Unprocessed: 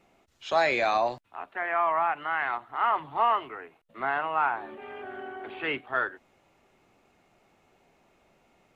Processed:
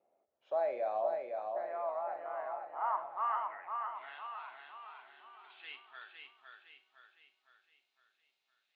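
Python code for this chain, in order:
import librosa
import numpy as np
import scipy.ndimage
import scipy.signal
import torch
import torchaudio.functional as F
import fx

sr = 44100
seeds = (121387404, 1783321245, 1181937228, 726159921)

p1 = fx.filter_sweep_bandpass(x, sr, from_hz=590.0, to_hz=3900.0, start_s=2.48, end_s=4.26, q=3.7)
p2 = p1 + fx.echo_feedback(p1, sr, ms=510, feedback_pct=48, wet_db=-4.5, dry=0)
p3 = fx.rev_schroeder(p2, sr, rt60_s=0.39, comb_ms=29, drr_db=11.0)
y = p3 * 10.0 ** (-5.0 / 20.0)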